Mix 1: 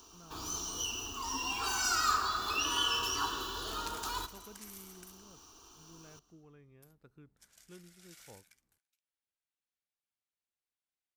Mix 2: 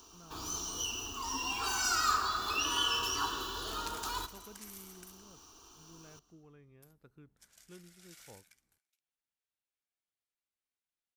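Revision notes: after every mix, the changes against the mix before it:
second sound: send +8.0 dB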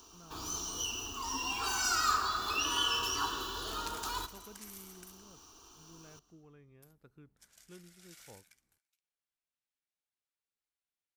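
nothing changed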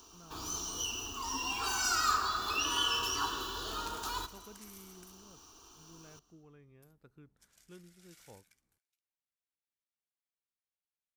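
second sound −4.5 dB

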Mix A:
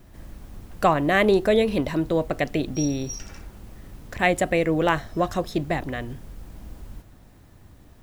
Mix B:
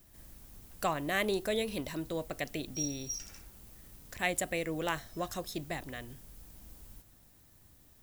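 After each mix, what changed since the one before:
master: add first-order pre-emphasis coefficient 0.8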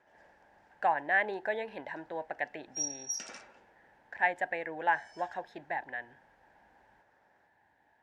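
speech: add pair of resonant band-passes 1,200 Hz, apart 0.93 octaves
master: remove first-order pre-emphasis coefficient 0.8

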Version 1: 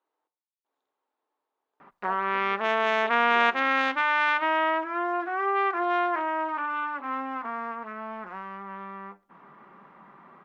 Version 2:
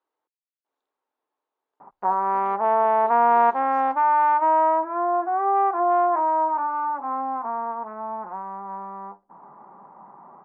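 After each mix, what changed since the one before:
background: add low-pass with resonance 860 Hz, resonance Q 4.1
reverb: off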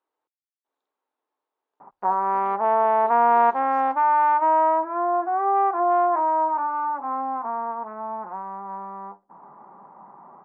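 master: add high-pass filter 47 Hz 6 dB per octave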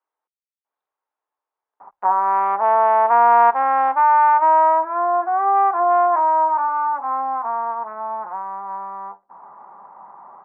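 background +6.0 dB
master: add three-way crossover with the lows and the highs turned down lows −13 dB, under 580 Hz, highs −15 dB, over 3,000 Hz

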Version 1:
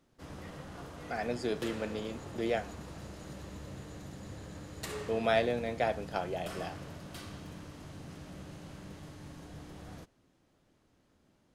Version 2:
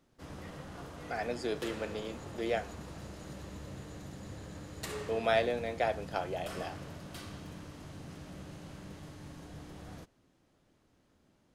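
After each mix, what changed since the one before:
speech: add high-pass filter 290 Hz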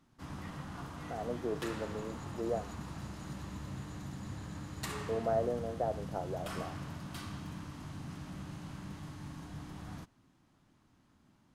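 speech: add Gaussian smoothing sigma 8.6 samples
background: add octave-band graphic EQ 125/250/500/1,000 Hz +4/+4/−9/+6 dB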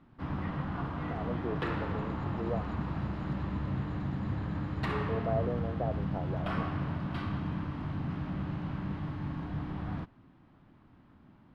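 background +9.5 dB
master: add high-frequency loss of the air 400 metres

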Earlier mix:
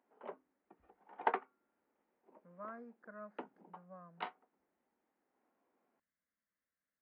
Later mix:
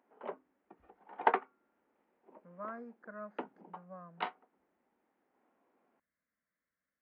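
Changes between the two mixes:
speech +4.5 dB
background +5.5 dB

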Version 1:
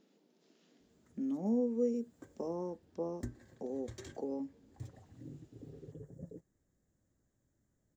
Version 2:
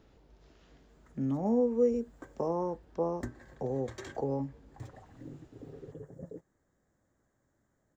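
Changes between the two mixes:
speech: remove linear-phase brick-wall high-pass 170 Hz
master: add parametric band 1,100 Hz +12 dB 2.7 octaves

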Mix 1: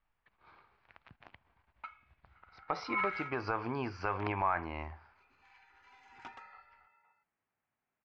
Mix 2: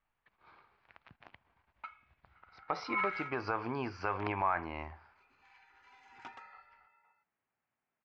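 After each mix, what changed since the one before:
master: add low-shelf EQ 73 Hz −7 dB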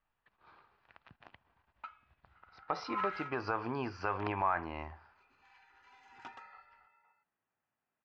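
master: add notch filter 2,200 Hz, Q 10

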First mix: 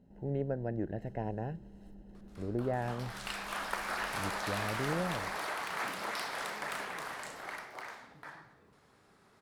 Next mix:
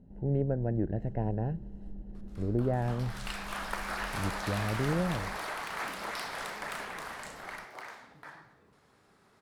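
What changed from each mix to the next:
speech: add spectral tilt −2.5 dB per octave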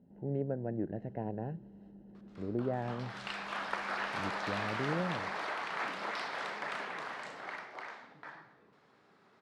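speech −3.5 dB
master: add band-pass filter 160–4,300 Hz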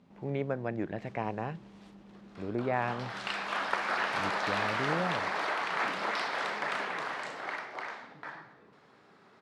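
speech: remove moving average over 38 samples
background +5.5 dB

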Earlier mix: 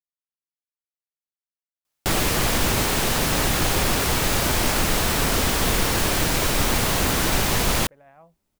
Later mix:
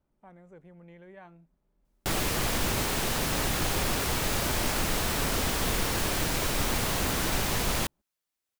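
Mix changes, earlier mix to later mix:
speech: entry −2.75 s
background −7.0 dB

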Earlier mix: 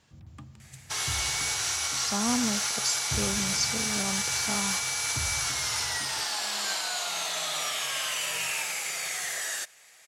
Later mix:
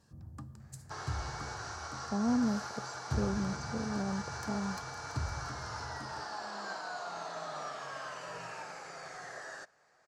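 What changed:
speech: add moving average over 33 samples
second sound: add head-to-tape spacing loss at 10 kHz 33 dB
master: add flat-topped bell 2,700 Hz −13 dB 1.1 octaves

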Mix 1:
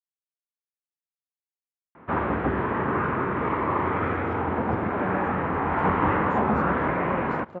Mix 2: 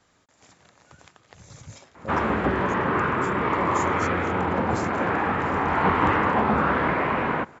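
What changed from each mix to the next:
speech: entry −2.55 s
master: remove high-frequency loss of the air 470 metres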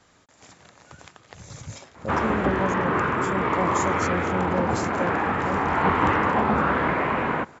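speech +5.0 dB

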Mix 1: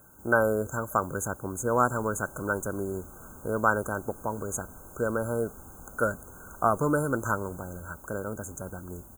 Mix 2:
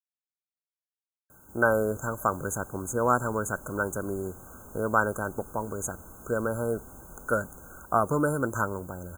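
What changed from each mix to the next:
speech: entry +1.30 s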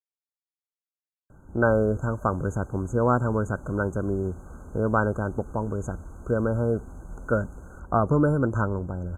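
speech: add spectral tilt −3 dB per octave
master: add high-frequency loss of the air 62 metres

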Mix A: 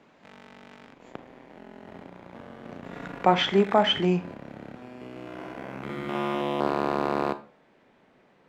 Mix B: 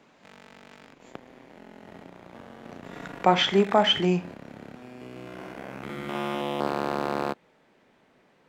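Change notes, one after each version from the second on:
background: send off
master: add high-shelf EQ 5,000 Hz +9 dB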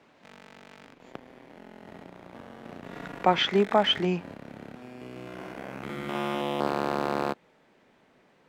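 speech: add band-pass filter 130–5,300 Hz
reverb: off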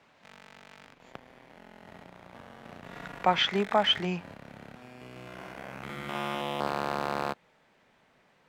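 master: add parametric band 320 Hz −8 dB 1.5 octaves

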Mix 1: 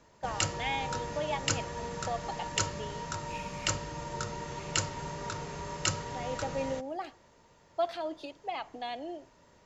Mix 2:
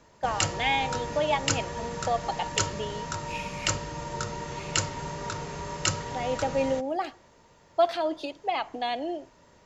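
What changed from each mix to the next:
speech +8.0 dB
background +3.5 dB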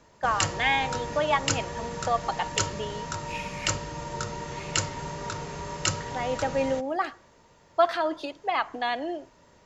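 speech: add flat-topped bell 1,400 Hz +8.5 dB 1.1 octaves

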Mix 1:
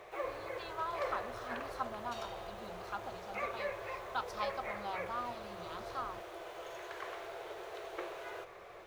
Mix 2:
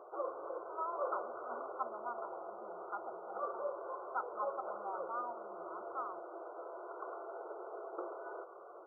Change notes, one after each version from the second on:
speech: add Bessel high-pass filter 570 Hz, order 2
master: add linear-phase brick-wall low-pass 1,500 Hz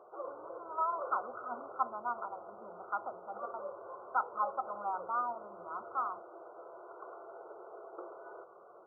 speech +7.0 dB
background −3.5 dB

